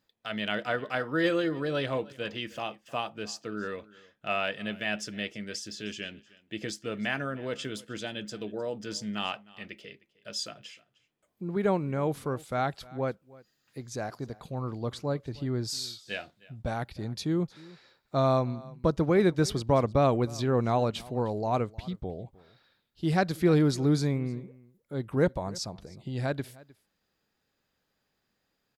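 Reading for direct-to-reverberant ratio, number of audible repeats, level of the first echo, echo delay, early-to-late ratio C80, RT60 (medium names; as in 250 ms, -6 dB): no reverb, 1, -22.0 dB, 308 ms, no reverb, no reverb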